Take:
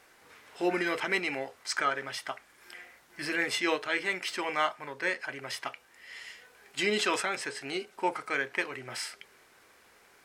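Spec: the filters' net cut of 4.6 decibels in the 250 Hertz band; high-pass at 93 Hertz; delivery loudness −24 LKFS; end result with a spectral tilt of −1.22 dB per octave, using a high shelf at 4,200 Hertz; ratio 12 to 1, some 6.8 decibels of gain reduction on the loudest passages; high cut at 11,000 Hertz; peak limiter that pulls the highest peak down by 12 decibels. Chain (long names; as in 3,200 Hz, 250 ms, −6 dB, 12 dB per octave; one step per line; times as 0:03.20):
high-pass filter 93 Hz
low-pass filter 11,000 Hz
parametric band 250 Hz −8 dB
high-shelf EQ 4,200 Hz +5.5 dB
downward compressor 12 to 1, threshold −30 dBFS
level +16.5 dB
brickwall limiter −13.5 dBFS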